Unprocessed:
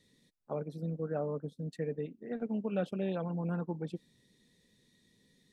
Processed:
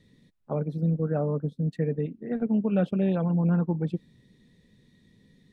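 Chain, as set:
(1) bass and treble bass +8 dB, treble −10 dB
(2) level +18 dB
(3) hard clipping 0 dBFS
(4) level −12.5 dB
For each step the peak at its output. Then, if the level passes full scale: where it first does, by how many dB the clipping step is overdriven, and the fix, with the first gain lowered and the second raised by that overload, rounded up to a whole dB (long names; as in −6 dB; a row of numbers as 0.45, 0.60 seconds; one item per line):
−20.0, −2.0, −2.0, −14.5 dBFS
no step passes full scale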